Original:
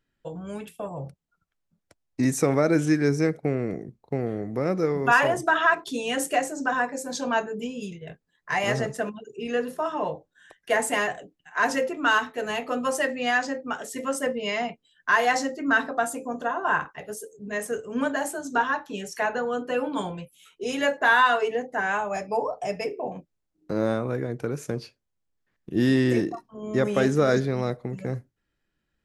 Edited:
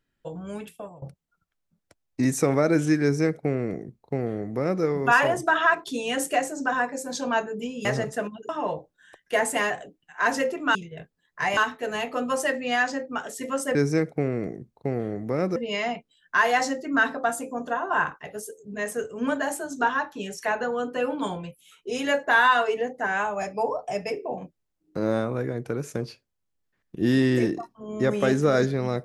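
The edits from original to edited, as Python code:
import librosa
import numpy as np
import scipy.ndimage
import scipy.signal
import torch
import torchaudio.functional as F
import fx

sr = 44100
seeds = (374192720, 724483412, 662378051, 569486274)

y = fx.edit(x, sr, fx.fade_out_to(start_s=0.67, length_s=0.35, floor_db=-20.0),
    fx.duplicate(start_s=3.02, length_s=1.81, to_s=14.3),
    fx.move(start_s=7.85, length_s=0.82, to_s=12.12),
    fx.cut(start_s=9.31, length_s=0.55), tone=tone)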